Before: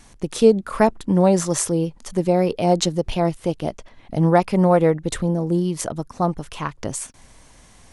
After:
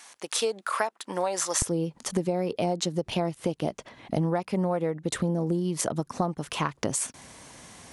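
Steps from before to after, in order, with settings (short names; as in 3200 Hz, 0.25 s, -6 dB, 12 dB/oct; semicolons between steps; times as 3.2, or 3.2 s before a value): HPF 840 Hz 12 dB/oct, from 1.62 s 120 Hz; compressor 16:1, threshold -27 dBFS, peak gain reduction 18 dB; gain +4 dB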